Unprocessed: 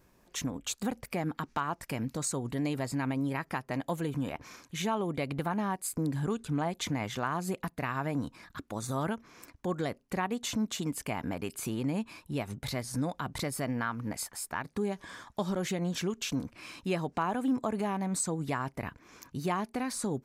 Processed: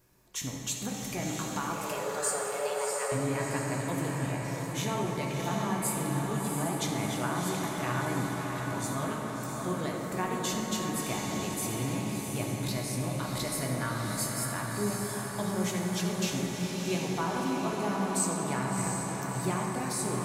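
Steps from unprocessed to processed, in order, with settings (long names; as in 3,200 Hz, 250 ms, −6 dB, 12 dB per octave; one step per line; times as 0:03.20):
high-shelf EQ 4,200 Hz +8.5 dB
feedback delay with all-pass diffusion 688 ms, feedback 55%, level −4 dB
0:01.73–0:03.12: frequency shifter +290 Hz
convolution reverb RT60 4.7 s, pre-delay 4 ms, DRR −2 dB
level −5 dB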